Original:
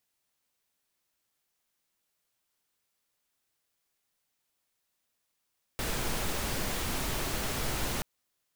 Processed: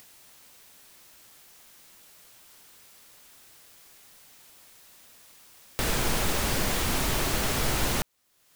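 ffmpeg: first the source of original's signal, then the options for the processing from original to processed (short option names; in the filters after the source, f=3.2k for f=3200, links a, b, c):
-f lavfi -i "anoisesrc=c=pink:a=0.129:d=2.23:r=44100:seed=1"
-filter_complex "[0:a]asplit=2[a][b];[b]acompressor=mode=upward:threshold=-33dB:ratio=2.5,volume=0dB[c];[a][c]amix=inputs=2:normalize=0"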